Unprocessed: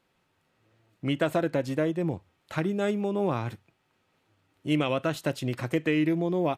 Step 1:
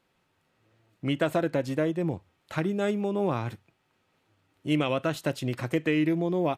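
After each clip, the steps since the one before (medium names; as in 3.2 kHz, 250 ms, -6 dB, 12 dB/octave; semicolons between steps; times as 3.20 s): no audible change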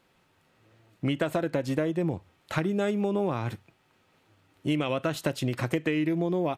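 compression, threshold -29 dBFS, peak gain reduction 9 dB; trim +5.5 dB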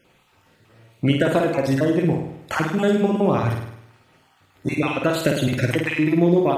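random holes in the spectrogram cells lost 33%; on a send: flutter echo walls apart 8.9 m, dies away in 0.75 s; on the sum: trim +8 dB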